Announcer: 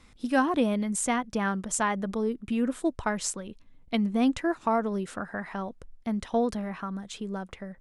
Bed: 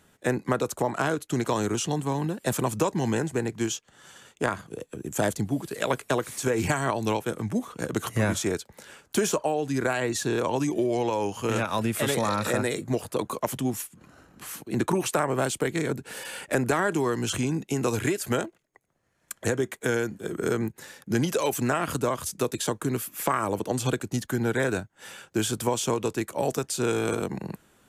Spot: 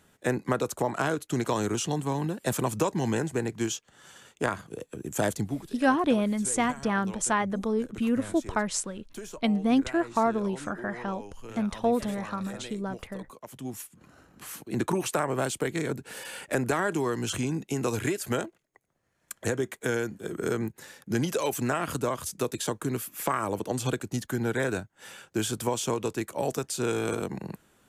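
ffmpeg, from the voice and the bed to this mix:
-filter_complex "[0:a]adelay=5500,volume=1dB[a];[1:a]volume=12.5dB,afade=t=out:st=5.4:d=0.37:silence=0.177828,afade=t=in:st=13.48:d=0.58:silence=0.199526[b];[a][b]amix=inputs=2:normalize=0"

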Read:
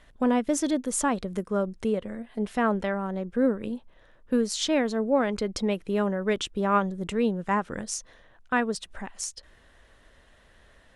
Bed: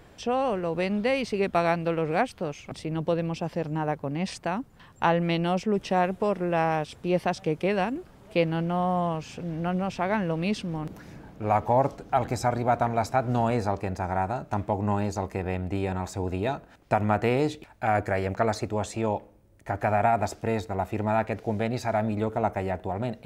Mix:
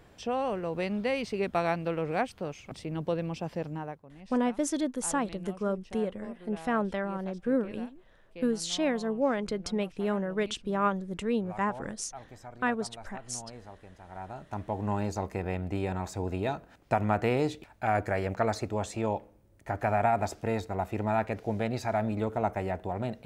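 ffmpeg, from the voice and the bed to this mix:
-filter_complex "[0:a]adelay=4100,volume=-4dB[a];[1:a]volume=13.5dB,afade=t=out:st=3.62:d=0.42:silence=0.149624,afade=t=in:st=14.04:d=1.05:silence=0.125893[b];[a][b]amix=inputs=2:normalize=0"

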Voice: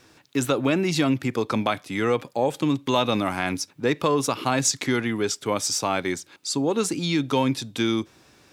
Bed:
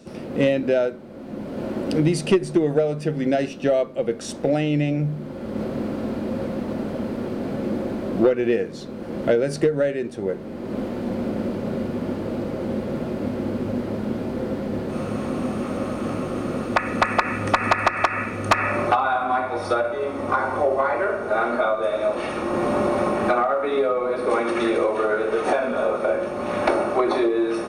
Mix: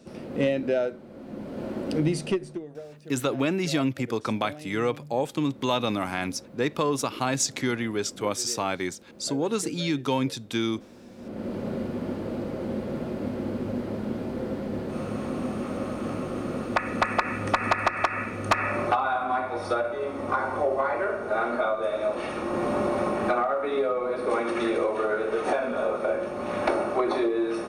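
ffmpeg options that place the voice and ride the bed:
-filter_complex "[0:a]adelay=2750,volume=-3.5dB[a];[1:a]volume=11.5dB,afade=t=out:st=2.13:d=0.53:silence=0.158489,afade=t=in:st=11.16:d=0.42:silence=0.149624[b];[a][b]amix=inputs=2:normalize=0"

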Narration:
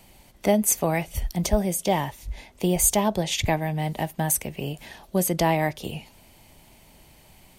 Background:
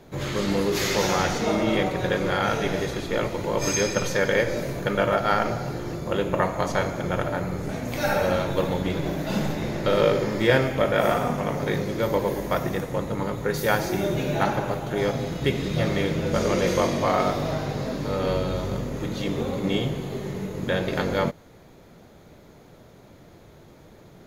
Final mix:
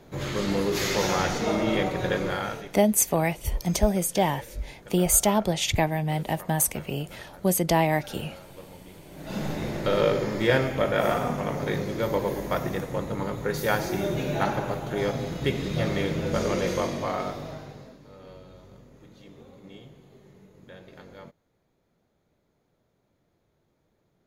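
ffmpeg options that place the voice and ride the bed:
-filter_complex "[0:a]adelay=2300,volume=0dB[a];[1:a]volume=17dB,afade=t=out:st=2.17:d=0.55:silence=0.105925,afade=t=in:st=9.1:d=0.45:silence=0.112202,afade=t=out:st=16.36:d=1.63:silence=0.105925[b];[a][b]amix=inputs=2:normalize=0"

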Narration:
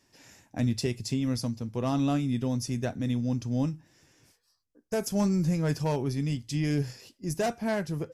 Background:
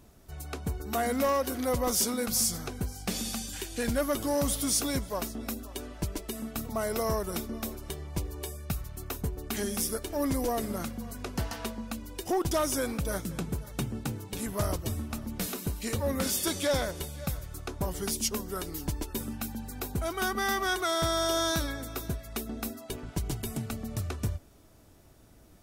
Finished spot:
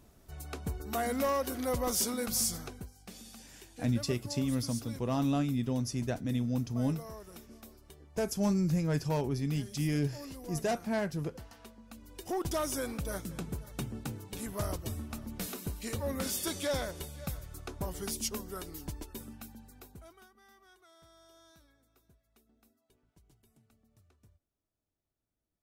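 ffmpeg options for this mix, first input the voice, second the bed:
-filter_complex "[0:a]adelay=3250,volume=-3dB[a];[1:a]volume=8dB,afade=t=out:st=2.54:d=0.37:silence=0.223872,afade=t=in:st=11.84:d=0.59:silence=0.266073,afade=t=out:st=18.32:d=1.97:silence=0.0421697[b];[a][b]amix=inputs=2:normalize=0"

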